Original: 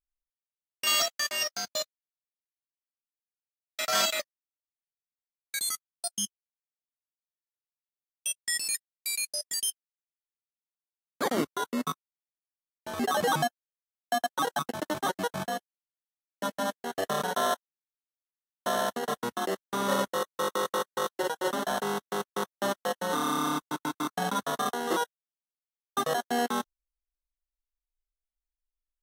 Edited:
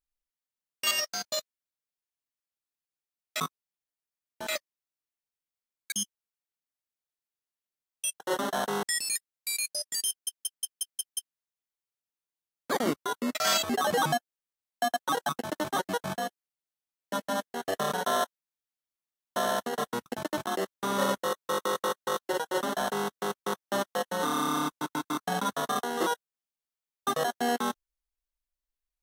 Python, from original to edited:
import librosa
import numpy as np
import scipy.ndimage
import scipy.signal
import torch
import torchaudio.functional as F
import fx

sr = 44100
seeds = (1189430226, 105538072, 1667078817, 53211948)

y = fx.edit(x, sr, fx.cut(start_s=0.91, length_s=0.43),
    fx.swap(start_s=3.83, length_s=0.28, other_s=11.86, other_length_s=1.07),
    fx.cut(start_s=5.56, length_s=0.58),
    fx.stutter(start_s=9.68, slice_s=0.18, count=7),
    fx.duplicate(start_s=14.63, length_s=0.4, to_s=19.36),
    fx.duplicate(start_s=21.34, length_s=0.63, to_s=8.42), tone=tone)